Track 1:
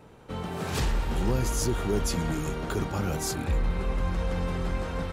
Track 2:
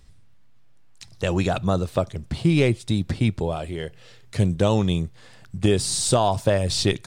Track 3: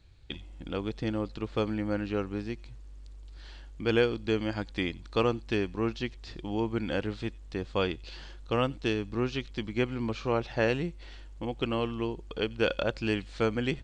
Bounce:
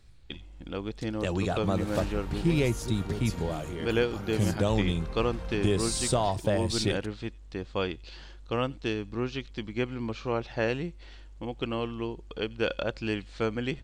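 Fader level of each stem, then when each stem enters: -9.5 dB, -7.0 dB, -1.5 dB; 1.20 s, 0.00 s, 0.00 s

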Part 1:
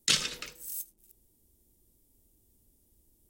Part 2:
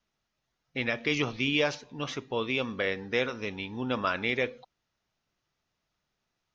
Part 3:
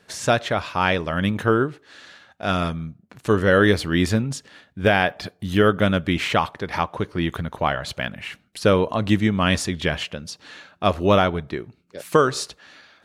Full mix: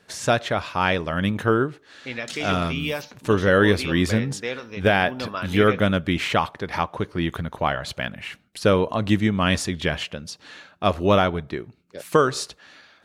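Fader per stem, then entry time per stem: -11.5 dB, -1.5 dB, -1.0 dB; 2.20 s, 1.30 s, 0.00 s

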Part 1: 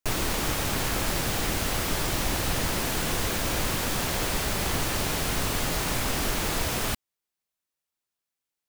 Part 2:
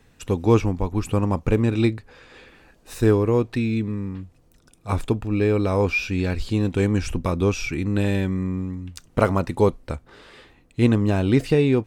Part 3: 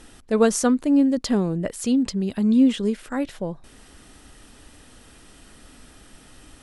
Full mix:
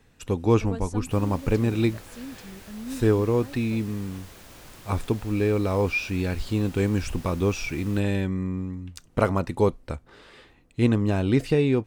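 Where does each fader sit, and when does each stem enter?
-19.5 dB, -3.0 dB, -19.0 dB; 1.05 s, 0.00 s, 0.30 s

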